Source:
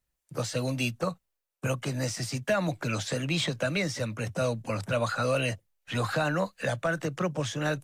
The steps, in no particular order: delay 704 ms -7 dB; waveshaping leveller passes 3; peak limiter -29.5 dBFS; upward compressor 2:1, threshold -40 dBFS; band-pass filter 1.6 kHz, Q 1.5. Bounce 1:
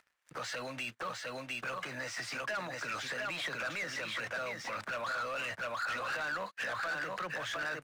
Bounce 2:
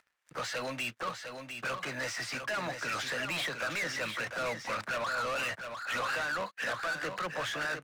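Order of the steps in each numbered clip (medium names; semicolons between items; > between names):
upward compressor > delay > peak limiter > band-pass filter > waveshaping leveller; upward compressor > band-pass filter > peak limiter > waveshaping leveller > delay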